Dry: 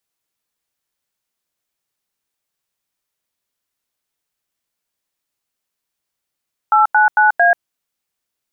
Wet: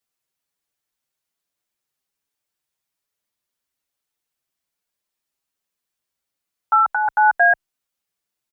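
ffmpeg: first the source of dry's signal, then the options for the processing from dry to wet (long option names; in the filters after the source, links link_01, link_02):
-f lavfi -i "aevalsrc='0.282*clip(min(mod(t,0.225),0.136-mod(t,0.225))/0.002,0,1)*(eq(floor(t/0.225),0)*(sin(2*PI*852*mod(t,0.225))+sin(2*PI*1336*mod(t,0.225)))+eq(floor(t/0.225),1)*(sin(2*PI*852*mod(t,0.225))+sin(2*PI*1477*mod(t,0.225)))+eq(floor(t/0.225),2)*(sin(2*PI*852*mod(t,0.225))+sin(2*PI*1477*mod(t,0.225)))+eq(floor(t/0.225),3)*(sin(2*PI*697*mod(t,0.225))+sin(2*PI*1633*mod(t,0.225))))':duration=0.9:sample_rate=44100"
-filter_complex "[0:a]asplit=2[link_01][link_02];[link_02]adelay=6.3,afreqshift=1.2[link_03];[link_01][link_03]amix=inputs=2:normalize=1"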